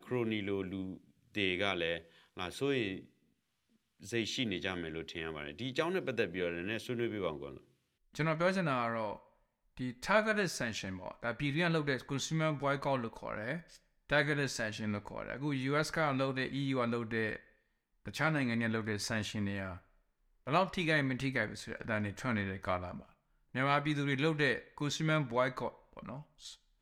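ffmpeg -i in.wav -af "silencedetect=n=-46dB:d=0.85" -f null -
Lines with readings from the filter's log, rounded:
silence_start: 3.05
silence_end: 4.03 | silence_duration: 0.98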